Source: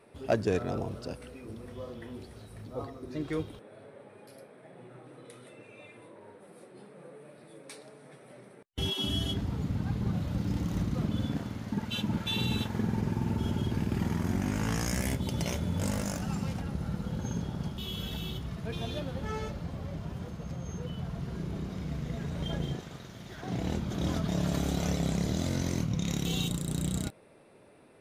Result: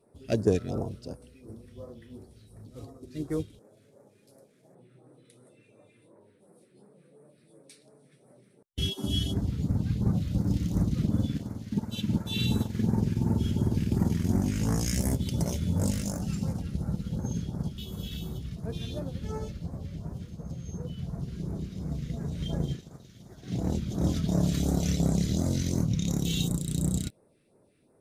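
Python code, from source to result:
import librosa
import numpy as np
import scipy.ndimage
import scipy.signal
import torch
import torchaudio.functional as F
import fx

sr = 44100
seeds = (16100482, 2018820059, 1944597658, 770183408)

y = fx.cvsd(x, sr, bps=64000, at=(2.68, 4.75))
y = fx.phaser_stages(y, sr, stages=2, low_hz=770.0, high_hz=2900.0, hz=2.8, feedback_pct=25)
y = fx.upward_expand(y, sr, threshold_db=-47.0, expansion=1.5)
y = y * 10.0 ** (6.0 / 20.0)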